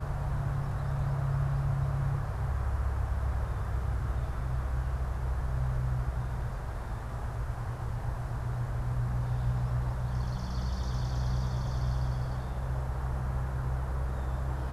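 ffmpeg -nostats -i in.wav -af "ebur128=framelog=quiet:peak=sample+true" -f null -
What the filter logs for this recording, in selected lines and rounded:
Integrated loudness:
  I:         -33.4 LUFS
  Threshold: -43.4 LUFS
Loudness range:
  LRA:         3.0 LU
  Threshold: -53.4 LUFS
  LRA low:   -35.1 LUFS
  LRA high:  -32.1 LUFS
Sample peak:
  Peak:      -19.3 dBFS
True peak:
  Peak:      -19.3 dBFS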